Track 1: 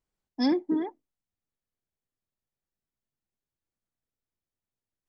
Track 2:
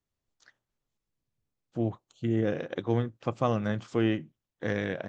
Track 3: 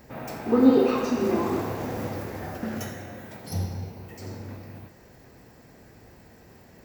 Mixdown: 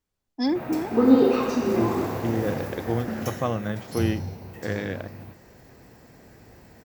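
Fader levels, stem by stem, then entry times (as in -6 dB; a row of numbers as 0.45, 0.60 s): +0.5, +0.5, +1.0 dB; 0.00, 0.00, 0.45 s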